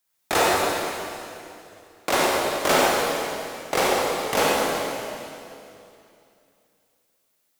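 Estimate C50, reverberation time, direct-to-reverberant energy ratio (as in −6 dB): −3.5 dB, 2.7 s, −5.0 dB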